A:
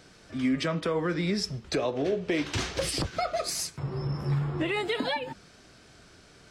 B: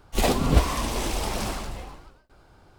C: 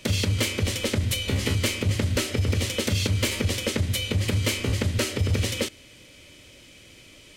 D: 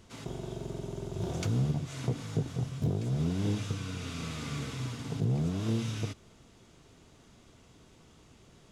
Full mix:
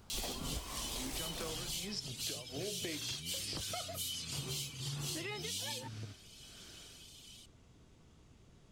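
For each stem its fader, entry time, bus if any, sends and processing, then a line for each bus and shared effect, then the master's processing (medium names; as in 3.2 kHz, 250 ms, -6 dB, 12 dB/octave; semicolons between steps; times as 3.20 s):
-5.5 dB, 0.55 s, no send, peaking EQ 4.5 kHz +6 dB 1.9 oct; tremolo of two beating tones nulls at 1.3 Hz
-9.0 dB, 0.00 s, no send, treble shelf 4.1 kHz +10.5 dB
+1.0 dB, 0.10 s, no send, phase randomisation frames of 200 ms; steep high-pass 3 kHz 36 dB/octave; reverb removal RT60 1.1 s
-8.0 dB, 0.00 s, no send, compression, threshold -39 dBFS, peak gain reduction 13.5 dB; bass shelf 160 Hz +8 dB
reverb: none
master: compression 12:1, threshold -37 dBFS, peak gain reduction 17.5 dB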